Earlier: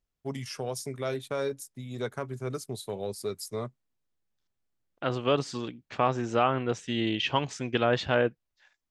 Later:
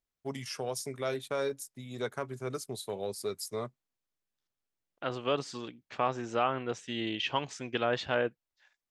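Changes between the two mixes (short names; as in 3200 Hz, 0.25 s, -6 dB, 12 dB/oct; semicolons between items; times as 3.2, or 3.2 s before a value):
second voice -3.5 dB; master: add low shelf 230 Hz -7.5 dB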